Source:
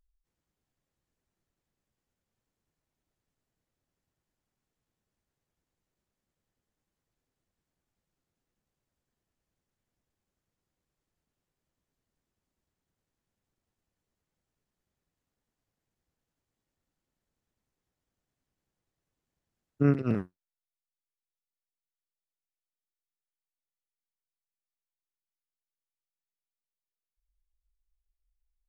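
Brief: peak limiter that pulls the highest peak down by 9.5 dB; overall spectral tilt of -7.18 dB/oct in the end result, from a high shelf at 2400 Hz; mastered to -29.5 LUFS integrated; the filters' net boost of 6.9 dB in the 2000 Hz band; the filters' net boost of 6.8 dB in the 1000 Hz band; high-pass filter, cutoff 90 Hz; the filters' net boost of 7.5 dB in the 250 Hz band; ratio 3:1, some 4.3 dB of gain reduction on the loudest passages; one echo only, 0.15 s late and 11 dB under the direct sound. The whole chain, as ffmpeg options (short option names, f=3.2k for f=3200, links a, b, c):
-af "highpass=90,equalizer=f=250:t=o:g=8.5,equalizer=f=1k:t=o:g=6,equalizer=f=2k:t=o:g=3.5,highshelf=f=2.4k:g=7,acompressor=threshold=-18dB:ratio=3,alimiter=limit=-20.5dB:level=0:latency=1,aecho=1:1:150:0.282,volume=1.5dB"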